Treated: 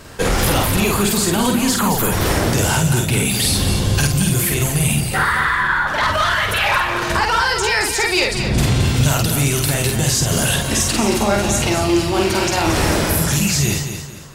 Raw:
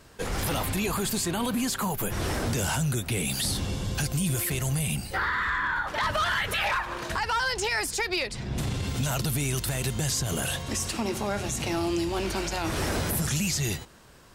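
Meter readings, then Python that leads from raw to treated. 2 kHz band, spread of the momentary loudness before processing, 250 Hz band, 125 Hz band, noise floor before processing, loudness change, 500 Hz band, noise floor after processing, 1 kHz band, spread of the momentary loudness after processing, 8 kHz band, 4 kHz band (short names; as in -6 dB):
+11.0 dB, 4 LU, +11.5 dB, +11.5 dB, -42 dBFS, +11.5 dB, +12.0 dB, -23 dBFS, +11.0 dB, 2 LU, +11.5 dB, +11.5 dB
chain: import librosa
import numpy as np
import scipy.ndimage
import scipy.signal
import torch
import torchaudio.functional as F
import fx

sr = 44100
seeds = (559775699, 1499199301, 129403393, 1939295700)

y = fx.rider(x, sr, range_db=10, speed_s=0.5)
y = fx.doubler(y, sr, ms=49.0, db=-3.0)
y = fx.echo_feedback(y, sr, ms=224, feedback_pct=36, wet_db=-8.5)
y = F.gain(torch.from_numpy(y), 9.0).numpy()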